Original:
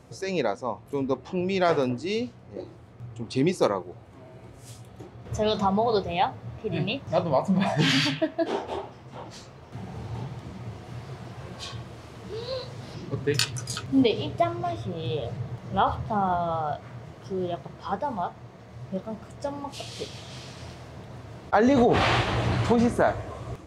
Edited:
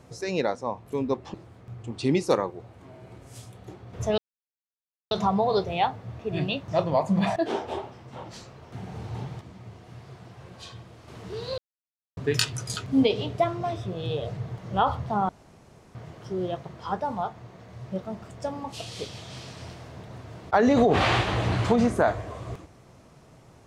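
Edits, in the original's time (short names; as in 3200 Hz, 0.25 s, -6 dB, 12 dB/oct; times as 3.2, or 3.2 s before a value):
1.34–2.66 cut
5.5 insert silence 0.93 s
7.75–8.36 cut
10.41–12.08 gain -6 dB
12.58–13.17 mute
16.29–16.95 room tone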